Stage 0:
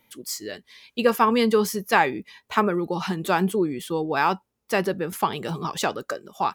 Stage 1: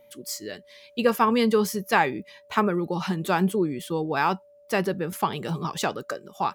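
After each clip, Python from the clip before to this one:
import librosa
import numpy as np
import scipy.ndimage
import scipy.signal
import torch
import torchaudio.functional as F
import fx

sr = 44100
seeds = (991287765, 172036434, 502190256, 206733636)

y = fx.peak_eq(x, sr, hz=150.0, db=4.0, octaves=1.0)
y = y + 10.0 ** (-50.0 / 20.0) * np.sin(2.0 * np.pi * 580.0 * np.arange(len(y)) / sr)
y = y * librosa.db_to_amplitude(-2.0)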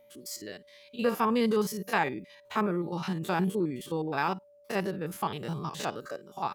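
y = fx.spec_steps(x, sr, hold_ms=50)
y = y * librosa.db_to_amplitude(-4.0)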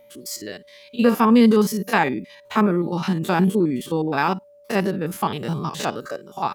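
y = fx.dynamic_eq(x, sr, hz=240.0, q=2.7, threshold_db=-45.0, ratio=4.0, max_db=7)
y = y * librosa.db_to_amplitude(8.0)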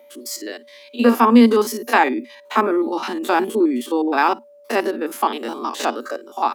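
y = scipy.signal.sosfilt(scipy.signal.cheby1(6, 3, 230.0, 'highpass', fs=sr, output='sos'), x)
y = y * librosa.db_to_amplitude(5.0)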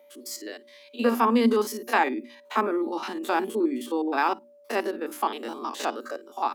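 y = fx.hum_notches(x, sr, base_hz=60, count=6)
y = y * librosa.db_to_amplitude(-7.0)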